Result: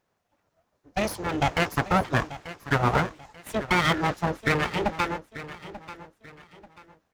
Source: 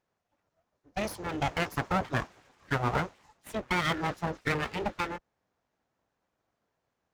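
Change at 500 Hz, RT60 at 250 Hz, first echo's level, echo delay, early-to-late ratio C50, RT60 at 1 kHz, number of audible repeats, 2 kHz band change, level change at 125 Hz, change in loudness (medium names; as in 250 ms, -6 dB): +6.0 dB, no reverb, -15.0 dB, 888 ms, no reverb, no reverb, 3, +6.0 dB, +6.0 dB, +6.0 dB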